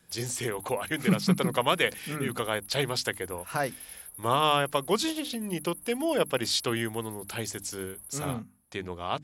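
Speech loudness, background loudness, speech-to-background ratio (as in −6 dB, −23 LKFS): −29.5 LKFS, −43.0 LKFS, 13.5 dB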